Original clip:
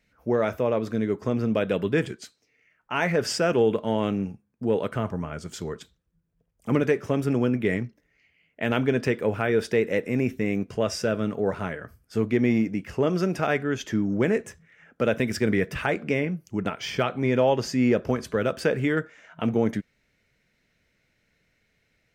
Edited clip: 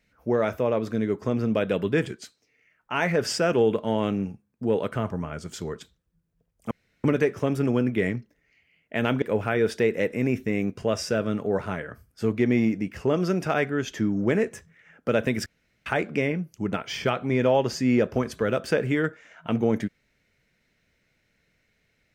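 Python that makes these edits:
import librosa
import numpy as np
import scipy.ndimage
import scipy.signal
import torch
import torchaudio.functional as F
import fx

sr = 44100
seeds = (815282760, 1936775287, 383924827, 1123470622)

y = fx.edit(x, sr, fx.insert_room_tone(at_s=6.71, length_s=0.33),
    fx.cut(start_s=8.89, length_s=0.26),
    fx.room_tone_fill(start_s=15.39, length_s=0.4), tone=tone)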